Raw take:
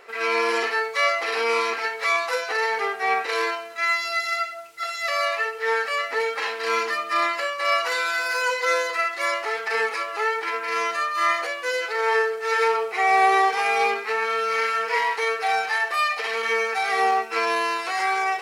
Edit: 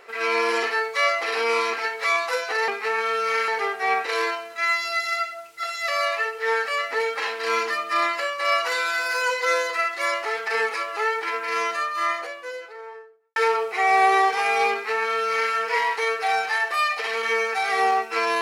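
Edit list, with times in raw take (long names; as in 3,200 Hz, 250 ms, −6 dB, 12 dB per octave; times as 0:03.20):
0:10.79–0:12.56: fade out and dull
0:13.92–0:14.72: duplicate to 0:02.68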